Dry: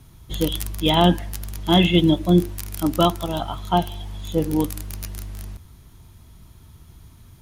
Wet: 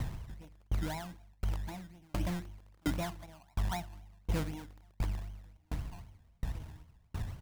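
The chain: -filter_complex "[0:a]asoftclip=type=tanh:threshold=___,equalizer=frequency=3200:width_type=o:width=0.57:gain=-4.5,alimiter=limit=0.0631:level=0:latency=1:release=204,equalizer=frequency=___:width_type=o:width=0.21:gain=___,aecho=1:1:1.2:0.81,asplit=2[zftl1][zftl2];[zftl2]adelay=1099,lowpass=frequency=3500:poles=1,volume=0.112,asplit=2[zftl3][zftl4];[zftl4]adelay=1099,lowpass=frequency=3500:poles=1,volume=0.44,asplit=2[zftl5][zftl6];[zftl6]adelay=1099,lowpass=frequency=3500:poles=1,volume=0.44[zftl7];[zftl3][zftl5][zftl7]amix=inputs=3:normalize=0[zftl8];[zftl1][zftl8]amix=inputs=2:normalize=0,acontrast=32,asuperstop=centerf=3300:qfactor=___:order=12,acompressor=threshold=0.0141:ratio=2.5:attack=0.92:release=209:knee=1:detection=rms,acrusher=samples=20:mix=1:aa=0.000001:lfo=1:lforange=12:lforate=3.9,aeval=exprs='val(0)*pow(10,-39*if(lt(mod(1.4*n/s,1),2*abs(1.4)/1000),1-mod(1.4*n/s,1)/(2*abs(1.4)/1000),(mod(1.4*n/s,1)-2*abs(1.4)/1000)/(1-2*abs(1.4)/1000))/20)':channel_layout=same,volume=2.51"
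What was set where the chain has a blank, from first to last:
0.15, 430, 14, 0.72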